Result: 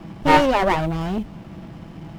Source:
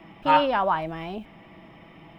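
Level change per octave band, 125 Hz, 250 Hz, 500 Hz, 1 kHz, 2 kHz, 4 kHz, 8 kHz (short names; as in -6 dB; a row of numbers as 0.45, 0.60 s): +13.0 dB, +9.5 dB, +5.5 dB, +3.0 dB, +7.0 dB, +4.5 dB, n/a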